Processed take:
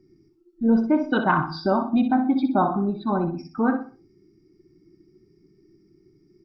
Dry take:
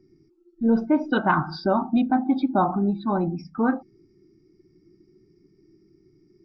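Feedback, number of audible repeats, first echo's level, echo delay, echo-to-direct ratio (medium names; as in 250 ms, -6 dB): 31%, 3, -9.0 dB, 62 ms, -8.5 dB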